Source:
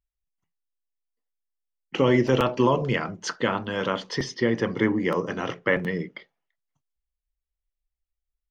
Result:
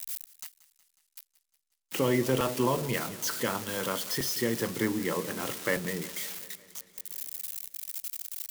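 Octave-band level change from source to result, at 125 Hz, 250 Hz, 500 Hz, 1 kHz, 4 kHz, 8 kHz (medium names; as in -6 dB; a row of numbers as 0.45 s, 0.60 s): -6.5 dB, -6.5 dB, -6.5 dB, -6.0 dB, -1.5 dB, +8.0 dB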